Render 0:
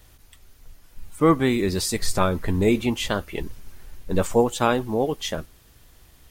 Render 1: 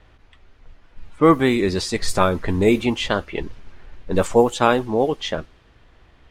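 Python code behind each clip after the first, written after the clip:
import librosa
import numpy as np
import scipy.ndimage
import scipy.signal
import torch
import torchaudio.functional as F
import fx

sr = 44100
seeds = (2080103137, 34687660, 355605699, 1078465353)

y = fx.env_lowpass(x, sr, base_hz=2600.0, full_db=-14.5)
y = fx.bass_treble(y, sr, bass_db=-4, treble_db=-3)
y = y * librosa.db_to_amplitude(4.5)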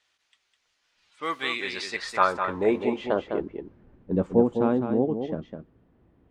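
y = fx.filter_sweep_bandpass(x, sr, from_hz=7000.0, to_hz=220.0, start_s=0.76, end_s=3.76, q=1.2)
y = y + 10.0 ** (-7.0 / 20.0) * np.pad(y, (int(205 * sr / 1000.0), 0))[:len(y)]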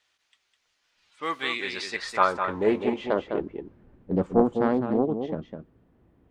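y = fx.doppler_dist(x, sr, depth_ms=0.45)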